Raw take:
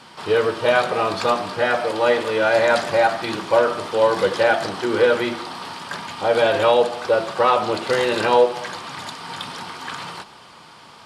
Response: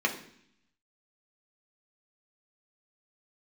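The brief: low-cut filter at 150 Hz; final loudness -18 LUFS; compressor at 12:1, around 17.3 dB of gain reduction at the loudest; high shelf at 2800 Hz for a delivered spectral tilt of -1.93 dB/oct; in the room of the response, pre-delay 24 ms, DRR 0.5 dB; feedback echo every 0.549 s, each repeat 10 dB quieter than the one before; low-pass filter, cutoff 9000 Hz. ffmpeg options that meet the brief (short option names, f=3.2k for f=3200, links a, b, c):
-filter_complex "[0:a]highpass=150,lowpass=9k,highshelf=f=2.8k:g=-6,acompressor=threshold=-29dB:ratio=12,aecho=1:1:549|1098|1647|2196:0.316|0.101|0.0324|0.0104,asplit=2[a][b];[1:a]atrim=start_sample=2205,adelay=24[c];[b][c]afir=irnorm=-1:irlink=0,volume=-11dB[d];[a][d]amix=inputs=2:normalize=0,volume=12.5dB"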